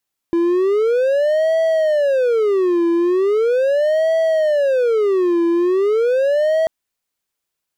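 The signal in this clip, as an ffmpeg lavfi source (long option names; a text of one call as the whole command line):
ffmpeg -f lavfi -i "aevalsrc='0.282*(1-4*abs(mod((494*t-156/(2*PI*0.39)*sin(2*PI*0.39*t))+0.25,1)-0.5))':duration=6.34:sample_rate=44100" out.wav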